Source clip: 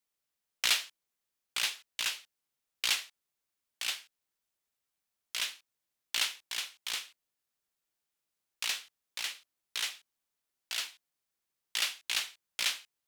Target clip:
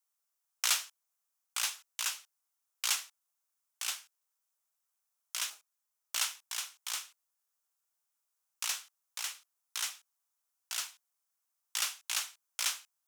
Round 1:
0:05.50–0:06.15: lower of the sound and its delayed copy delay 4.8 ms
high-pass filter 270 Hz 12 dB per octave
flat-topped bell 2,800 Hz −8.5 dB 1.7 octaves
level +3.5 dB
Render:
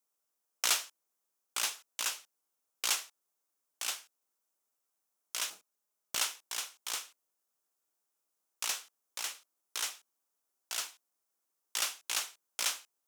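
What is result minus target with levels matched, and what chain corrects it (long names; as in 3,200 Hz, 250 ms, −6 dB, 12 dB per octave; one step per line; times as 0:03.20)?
250 Hz band +16.5 dB
0:05.50–0:06.15: lower of the sound and its delayed copy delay 4.8 ms
high-pass filter 910 Hz 12 dB per octave
flat-topped bell 2,800 Hz −8.5 dB 1.7 octaves
level +3.5 dB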